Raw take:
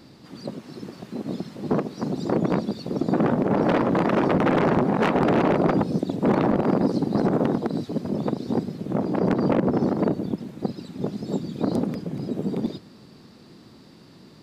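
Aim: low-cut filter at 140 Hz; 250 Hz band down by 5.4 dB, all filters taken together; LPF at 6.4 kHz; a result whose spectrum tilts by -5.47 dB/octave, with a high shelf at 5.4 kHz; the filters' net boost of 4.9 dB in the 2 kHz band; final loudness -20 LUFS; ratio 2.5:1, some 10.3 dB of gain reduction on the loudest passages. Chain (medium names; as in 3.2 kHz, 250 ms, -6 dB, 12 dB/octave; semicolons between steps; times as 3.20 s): high-pass 140 Hz; low-pass 6.4 kHz; peaking EQ 250 Hz -6.5 dB; peaking EQ 2 kHz +7 dB; treble shelf 5.4 kHz -5.5 dB; compression 2.5:1, threshold -34 dBFS; trim +15.5 dB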